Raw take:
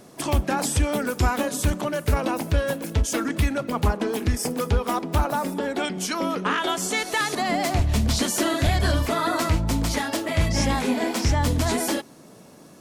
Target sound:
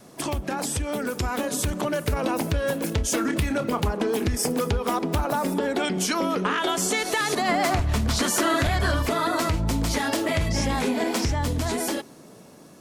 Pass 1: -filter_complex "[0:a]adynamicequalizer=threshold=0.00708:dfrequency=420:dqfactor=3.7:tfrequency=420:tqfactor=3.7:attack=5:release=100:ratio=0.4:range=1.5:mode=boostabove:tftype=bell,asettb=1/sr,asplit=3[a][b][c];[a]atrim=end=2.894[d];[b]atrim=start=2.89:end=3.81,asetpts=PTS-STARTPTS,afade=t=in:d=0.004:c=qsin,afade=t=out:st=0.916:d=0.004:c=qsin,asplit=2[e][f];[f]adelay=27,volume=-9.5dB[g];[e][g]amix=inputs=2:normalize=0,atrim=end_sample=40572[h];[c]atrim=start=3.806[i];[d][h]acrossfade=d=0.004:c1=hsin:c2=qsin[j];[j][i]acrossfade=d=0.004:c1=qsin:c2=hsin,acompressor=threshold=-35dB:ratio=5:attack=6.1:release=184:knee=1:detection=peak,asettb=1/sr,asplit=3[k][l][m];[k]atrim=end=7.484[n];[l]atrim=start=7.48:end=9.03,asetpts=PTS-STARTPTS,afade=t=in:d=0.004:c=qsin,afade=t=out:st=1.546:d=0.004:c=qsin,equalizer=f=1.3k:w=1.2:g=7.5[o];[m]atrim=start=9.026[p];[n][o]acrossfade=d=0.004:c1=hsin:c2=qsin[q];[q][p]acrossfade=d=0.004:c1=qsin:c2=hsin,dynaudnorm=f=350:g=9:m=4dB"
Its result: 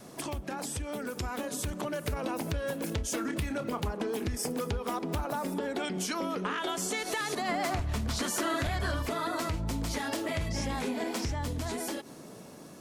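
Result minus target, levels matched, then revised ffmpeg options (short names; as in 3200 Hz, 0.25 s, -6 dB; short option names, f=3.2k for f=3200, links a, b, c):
compressor: peak gain reduction +8.5 dB
-filter_complex "[0:a]adynamicequalizer=threshold=0.00708:dfrequency=420:dqfactor=3.7:tfrequency=420:tqfactor=3.7:attack=5:release=100:ratio=0.4:range=1.5:mode=boostabove:tftype=bell,asettb=1/sr,asplit=3[a][b][c];[a]atrim=end=2.894[d];[b]atrim=start=2.89:end=3.81,asetpts=PTS-STARTPTS,afade=t=in:d=0.004:c=qsin,afade=t=out:st=0.916:d=0.004:c=qsin,asplit=2[e][f];[f]adelay=27,volume=-9.5dB[g];[e][g]amix=inputs=2:normalize=0,atrim=end_sample=40572[h];[c]atrim=start=3.806[i];[d][h]acrossfade=d=0.004:c1=hsin:c2=qsin[j];[j][i]acrossfade=d=0.004:c1=qsin:c2=hsin,acompressor=threshold=-24.5dB:ratio=5:attack=6.1:release=184:knee=1:detection=peak,asettb=1/sr,asplit=3[k][l][m];[k]atrim=end=7.484[n];[l]atrim=start=7.48:end=9.03,asetpts=PTS-STARTPTS,afade=t=in:d=0.004:c=qsin,afade=t=out:st=1.546:d=0.004:c=qsin,equalizer=f=1.3k:w=1.2:g=7.5[o];[m]atrim=start=9.026[p];[n][o]acrossfade=d=0.004:c1=hsin:c2=qsin[q];[q][p]acrossfade=d=0.004:c1=qsin:c2=hsin,dynaudnorm=f=350:g=9:m=4dB"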